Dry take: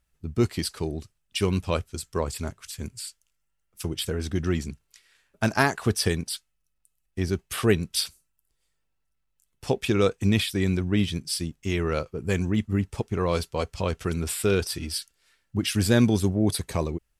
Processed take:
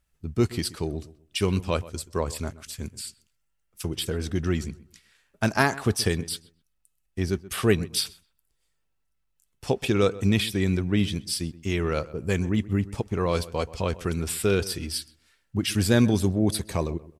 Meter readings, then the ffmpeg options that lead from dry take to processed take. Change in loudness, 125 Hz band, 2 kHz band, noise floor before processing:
0.0 dB, 0.0 dB, 0.0 dB, −75 dBFS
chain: -filter_complex "[0:a]asplit=2[link_01][link_02];[link_02]adelay=128,lowpass=frequency=1800:poles=1,volume=-17.5dB,asplit=2[link_03][link_04];[link_04]adelay=128,lowpass=frequency=1800:poles=1,volume=0.28,asplit=2[link_05][link_06];[link_06]adelay=128,lowpass=frequency=1800:poles=1,volume=0.28[link_07];[link_01][link_03][link_05][link_07]amix=inputs=4:normalize=0"

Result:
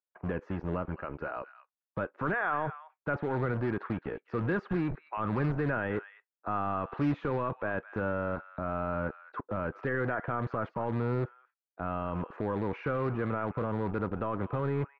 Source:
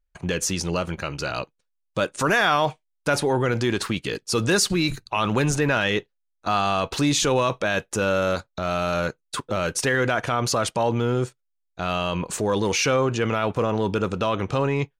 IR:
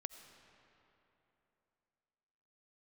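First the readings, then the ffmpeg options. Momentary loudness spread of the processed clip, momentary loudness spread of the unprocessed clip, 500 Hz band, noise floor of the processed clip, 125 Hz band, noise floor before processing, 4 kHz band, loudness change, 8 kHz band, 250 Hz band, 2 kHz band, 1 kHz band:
7 LU, 9 LU, −10.0 dB, below −85 dBFS, −7.0 dB, −75 dBFS, below −25 dB, −10.0 dB, below −40 dB, −7.5 dB, −11.0 dB, −9.0 dB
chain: -filter_complex "[0:a]lowpass=frequency=1600:width=0.5412,lowpass=frequency=1600:width=1.3066,acrossover=split=300|1100[link_01][link_02][link_03];[link_01]acrusher=bits=4:mix=0:aa=0.5[link_04];[link_02]alimiter=limit=-23.5dB:level=0:latency=1:release=110[link_05];[link_03]aecho=1:1:213:0.266[link_06];[link_04][link_05][link_06]amix=inputs=3:normalize=0,volume=-6.5dB"

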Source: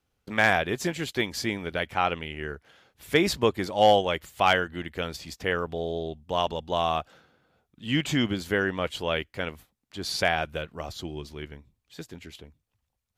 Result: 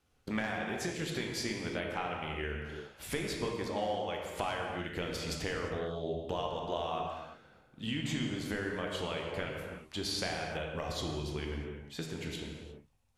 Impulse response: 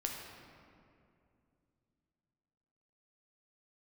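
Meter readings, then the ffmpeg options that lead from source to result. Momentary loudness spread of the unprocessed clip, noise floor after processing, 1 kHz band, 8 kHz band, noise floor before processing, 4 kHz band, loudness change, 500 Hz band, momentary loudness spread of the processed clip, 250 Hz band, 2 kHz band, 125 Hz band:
19 LU, −64 dBFS, −11.5 dB, −4.5 dB, −80 dBFS, −8.0 dB, −10.0 dB, −9.0 dB, 8 LU, −7.0 dB, −11.0 dB, −5.0 dB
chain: -filter_complex "[0:a]acompressor=threshold=-36dB:ratio=12[link_01];[1:a]atrim=start_sample=2205,afade=type=out:start_time=0.24:duration=0.01,atrim=end_sample=11025,asetrate=22932,aresample=44100[link_02];[link_01][link_02]afir=irnorm=-1:irlink=0"

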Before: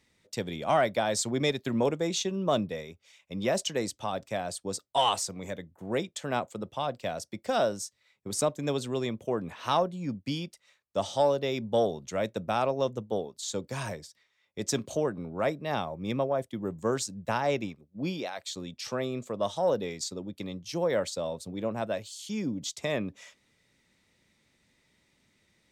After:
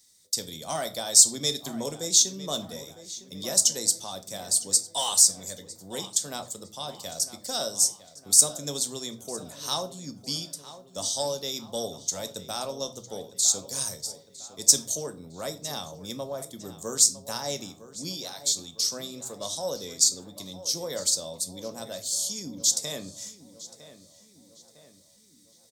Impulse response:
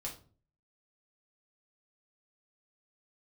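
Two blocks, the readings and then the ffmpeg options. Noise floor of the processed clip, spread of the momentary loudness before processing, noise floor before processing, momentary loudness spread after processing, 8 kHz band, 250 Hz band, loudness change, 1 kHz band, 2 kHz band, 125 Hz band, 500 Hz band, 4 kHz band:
−57 dBFS, 10 LU, −71 dBFS, 19 LU, +17.0 dB, −6.5 dB, +6.0 dB, −7.0 dB, −8.0 dB, −6.5 dB, −7.0 dB, +8.5 dB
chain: -filter_complex "[0:a]asplit=2[link_01][link_02];[1:a]atrim=start_sample=2205[link_03];[link_02][link_03]afir=irnorm=-1:irlink=0,volume=-2dB[link_04];[link_01][link_04]amix=inputs=2:normalize=0,aexciter=amount=12.6:drive=6.2:freq=3900,asplit=2[link_05][link_06];[link_06]adelay=956,lowpass=frequency=3200:poles=1,volume=-14dB,asplit=2[link_07][link_08];[link_08]adelay=956,lowpass=frequency=3200:poles=1,volume=0.54,asplit=2[link_09][link_10];[link_10]adelay=956,lowpass=frequency=3200:poles=1,volume=0.54,asplit=2[link_11][link_12];[link_12]adelay=956,lowpass=frequency=3200:poles=1,volume=0.54,asplit=2[link_13][link_14];[link_14]adelay=956,lowpass=frequency=3200:poles=1,volume=0.54[link_15];[link_07][link_09][link_11][link_13][link_15]amix=inputs=5:normalize=0[link_16];[link_05][link_16]amix=inputs=2:normalize=0,volume=-11dB"

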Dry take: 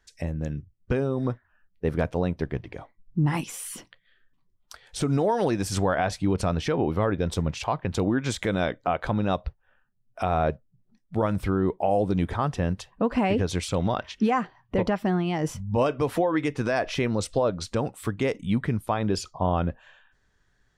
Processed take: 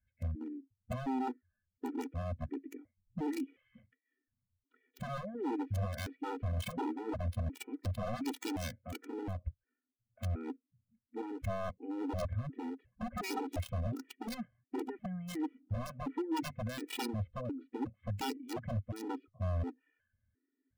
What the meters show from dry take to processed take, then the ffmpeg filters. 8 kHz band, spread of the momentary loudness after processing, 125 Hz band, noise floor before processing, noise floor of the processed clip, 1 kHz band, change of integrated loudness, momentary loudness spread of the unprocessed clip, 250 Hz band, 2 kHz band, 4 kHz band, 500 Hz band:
−14.5 dB, 7 LU, −11.0 dB, −68 dBFS, below −85 dBFS, −14.0 dB, −13.0 dB, 8 LU, −12.0 dB, −15.0 dB, −11.5 dB, −16.5 dB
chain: -filter_complex "[0:a]asplit=3[link_01][link_02][link_03];[link_01]bandpass=frequency=270:width_type=q:width=8,volume=0dB[link_04];[link_02]bandpass=frequency=2290:width_type=q:width=8,volume=-6dB[link_05];[link_03]bandpass=frequency=3010:width_type=q:width=8,volume=-9dB[link_06];[link_04][link_05][link_06]amix=inputs=3:normalize=0,lowshelf=frequency=130:width_type=q:width=3:gain=10,acrossover=split=1500[link_07][link_08];[link_08]acrusher=bits=6:mix=0:aa=0.000001[link_09];[link_07][link_09]amix=inputs=2:normalize=0,aeval=exprs='0.015*(abs(mod(val(0)/0.015+3,4)-2)-1)':channel_layout=same,afftfilt=real='re*gt(sin(2*PI*1.4*pts/sr)*(1-2*mod(floor(b*sr/1024/250),2)),0)':imag='im*gt(sin(2*PI*1.4*pts/sr)*(1-2*mod(floor(b*sr/1024/250),2)),0)':win_size=1024:overlap=0.75,volume=8.5dB"

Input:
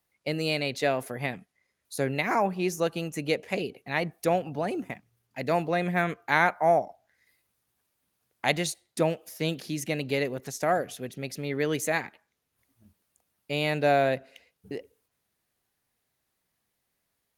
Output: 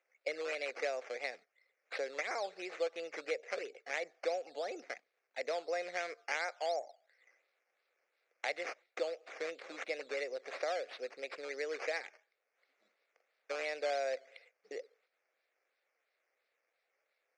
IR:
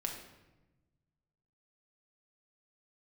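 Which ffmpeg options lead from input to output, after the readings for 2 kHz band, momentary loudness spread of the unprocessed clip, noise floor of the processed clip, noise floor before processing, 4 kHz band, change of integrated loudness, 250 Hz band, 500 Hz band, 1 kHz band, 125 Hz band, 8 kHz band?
−9.5 dB, 13 LU, −84 dBFS, −79 dBFS, −11.0 dB, −11.5 dB, −23.0 dB, −10.0 dB, −14.0 dB, below −40 dB, −13.5 dB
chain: -af "acrusher=samples=9:mix=1:aa=0.000001:lfo=1:lforange=5.4:lforate=2.9,acompressor=threshold=-33dB:ratio=3,highpass=frequency=460:width=0.5412,highpass=frequency=460:width=1.3066,equalizer=frequency=510:width_type=q:width=4:gain=6,equalizer=frequency=970:width_type=q:width=4:gain=-10,equalizer=frequency=2200:width_type=q:width=4:gain=6,equalizer=frequency=3100:width_type=q:width=4:gain=-8,lowpass=frequency=5900:width=0.5412,lowpass=frequency=5900:width=1.3066,volume=-2.5dB"

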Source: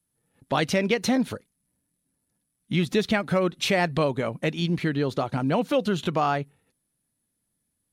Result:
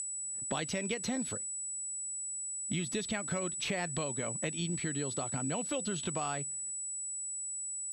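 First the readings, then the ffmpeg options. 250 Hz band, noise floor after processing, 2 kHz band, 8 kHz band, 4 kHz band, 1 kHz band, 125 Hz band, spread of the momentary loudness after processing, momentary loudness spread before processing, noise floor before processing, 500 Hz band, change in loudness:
−12.0 dB, −40 dBFS, −10.5 dB, +10.5 dB, −9.0 dB, −13.0 dB, −11.0 dB, 2 LU, 5 LU, −78 dBFS, −13.0 dB, −9.5 dB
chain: -filter_complex "[0:a]aeval=exprs='val(0)+0.0282*sin(2*PI*7900*n/s)':channel_layout=same,lowpass=frequency=11000:width=0.5412,lowpass=frequency=11000:width=1.3066,acrossover=split=80|2200[link_01][link_02][link_03];[link_01]acompressor=threshold=-56dB:ratio=4[link_04];[link_02]acompressor=threshold=-36dB:ratio=4[link_05];[link_03]acompressor=threshold=-39dB:ratio=4[link_06];[link_04][link_05][link_06]amix=inputs=3:normalize=0"

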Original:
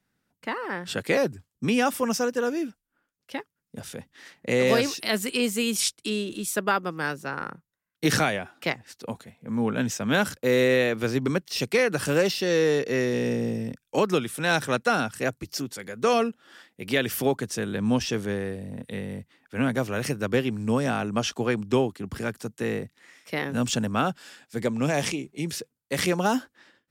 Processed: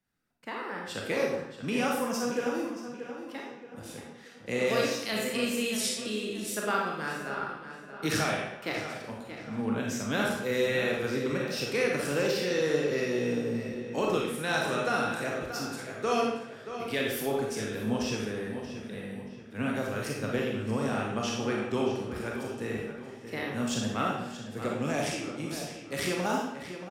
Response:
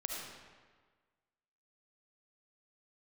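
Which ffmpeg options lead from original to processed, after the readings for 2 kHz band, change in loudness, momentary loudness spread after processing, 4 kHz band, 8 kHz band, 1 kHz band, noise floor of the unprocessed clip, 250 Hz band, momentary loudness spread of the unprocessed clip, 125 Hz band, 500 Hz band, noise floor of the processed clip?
−4.5 dB, −5.0 dB, 12 LU, −4.5 dB, −5.0 dB, −4.0 dB, −82 dBFS, −5.0 dB, 13 LU, −6.0 dB, −4.5 dB, −47 dBFS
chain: -filter_complex "[0:a]asplit=2[link_01][link_02];[link_02]adelay=629,lowpass=frequency=4000:poles=1,volume=-10dB,asplit=2[link_03][link_04];[link_04]adelay=629,lowpass=frequency=4000:poles=1,volume=0.42,asplit=2[link_05][link_06];[link_06]adelay=629,lowpass=frequency=4000:poles=1,volume=0.42,asplit=2[link_07][link_08];[link_08]adelay=629,lowpass=frequency=4000:poles=1,volume=0.42[link_09];[link_01][link_03][link_05][link_07][link_09]amix=inputs=5:normalize=0[link_10];[1:a]atrim=start_sample=2205,asetrate=88200,aresample=44100[link_11];[link_10][link_11]afir=irnorm=-1:irlink=0"

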